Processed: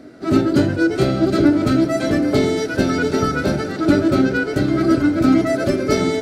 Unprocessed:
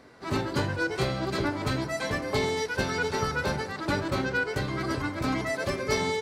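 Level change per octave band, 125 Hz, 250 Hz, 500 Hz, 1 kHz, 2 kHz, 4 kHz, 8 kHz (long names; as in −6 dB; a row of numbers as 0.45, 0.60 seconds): +9.0, +17.0, +11.0, +5.5, +4.5, +4.5, +5.0 decibels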